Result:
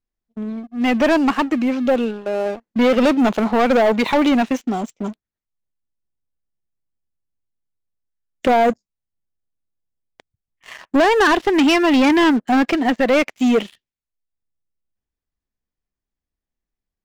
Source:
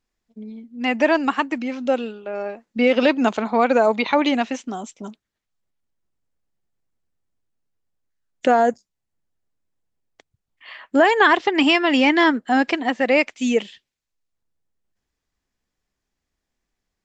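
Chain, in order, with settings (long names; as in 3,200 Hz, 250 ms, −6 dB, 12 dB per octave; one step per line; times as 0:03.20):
spectral tilt −1.5 dB per octave
leveller curve on the samples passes 3
level −5.5 dB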